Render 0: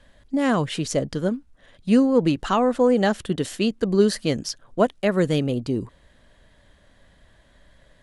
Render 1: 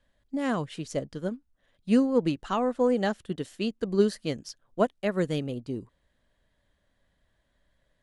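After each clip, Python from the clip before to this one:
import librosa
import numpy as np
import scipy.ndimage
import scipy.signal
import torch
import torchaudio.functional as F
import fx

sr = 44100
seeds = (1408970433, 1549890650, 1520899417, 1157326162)

y = fx.upward_expand(x, sr, threshold_db=-37.0, expansion=1.5)
y = y * 10.0 ** (-4.0 / 20.0)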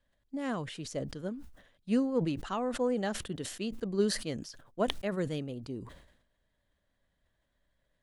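y = fx.sustainer(x, sr, db_per_s=73.0)
y = y * 10.0 ** (-6.5 / 20.0)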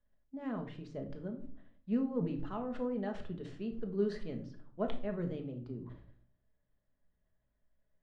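y = fx.spacing_loss(x, sr, db_at_10k=35)
y = fx.room_shoebox(y, sr, seeds[0], volume_m3=510.0, walls='furnished', distance_m=1.4)
y = y * 10.0 ** (-5.5 / 20.0)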